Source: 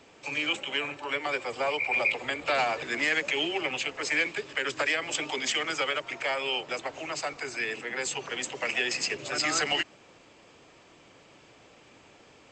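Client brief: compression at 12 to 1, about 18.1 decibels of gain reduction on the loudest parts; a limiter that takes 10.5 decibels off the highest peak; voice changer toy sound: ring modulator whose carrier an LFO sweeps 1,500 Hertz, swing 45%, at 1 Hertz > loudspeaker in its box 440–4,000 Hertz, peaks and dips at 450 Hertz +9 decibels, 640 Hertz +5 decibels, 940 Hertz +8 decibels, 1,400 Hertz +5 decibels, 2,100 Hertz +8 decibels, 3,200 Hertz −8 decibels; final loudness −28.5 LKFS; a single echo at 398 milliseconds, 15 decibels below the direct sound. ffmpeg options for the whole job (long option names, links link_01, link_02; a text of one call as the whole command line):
ffmpeg -i in.wav -af "acompressor=threshold=-40dB:ratio=12,alimiter=level_in=13.5dB:limit=-24dB:level=0:latency=1,volume=-13.5dB,aecho=1:1:398:0.178,aeval=exprs='val(0)*sin(2*PI*1500*n/s+1500*0.45/1*sin(2*PI*1*n/s))':channel_layout=same,highpass=440,equalizer=frequency=450:width_type=q:width=4:gain=9,equalizer=frequency=640:width_type=q:width=4:gain=5,equalizer=frequency=940:width_type=q:width=4:gain=8,equalizer=frequency=1400:width_type=q:width=4:gain=5,equalizer=frequency=2100:width_type=q:width=4:gain=8,equalizer=frequency=3200:width_type=q:width=4:gain=-8,lowpass=frequency=4000:width=0.5412,lowpass=frequency=4000:width=1.3066,volume=19dB" out.wav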